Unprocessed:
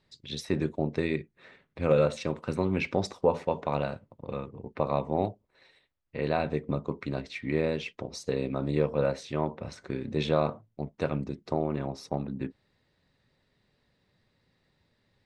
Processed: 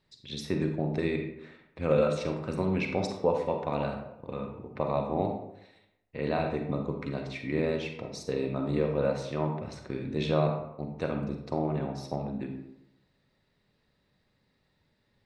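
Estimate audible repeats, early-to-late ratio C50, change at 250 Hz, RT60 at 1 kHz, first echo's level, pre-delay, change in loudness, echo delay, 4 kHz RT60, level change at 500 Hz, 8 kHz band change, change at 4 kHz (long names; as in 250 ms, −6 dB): no echo audible, 5.0 dB, 0.0 dB, 0.80 s, no echo audible, 39 ms, −0.5 dB, no echo audible, 0.50 s, −0.5 dB, −2.0 dB, −1.5 dB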